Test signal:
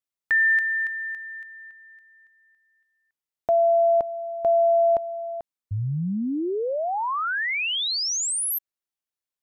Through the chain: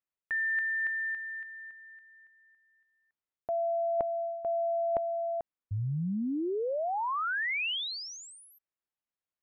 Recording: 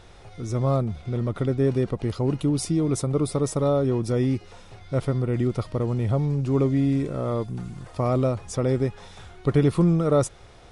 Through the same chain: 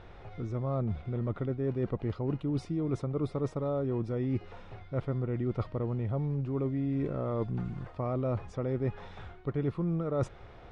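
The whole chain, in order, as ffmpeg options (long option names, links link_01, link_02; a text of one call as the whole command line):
ffmpeg -i in.wav -af "lowpass=2400,areverse,acompressor=threshold=-30dB:ratio=5:attack=68:release=224:knee=1:detection=rms,areverse,volume=-1dB" out.wav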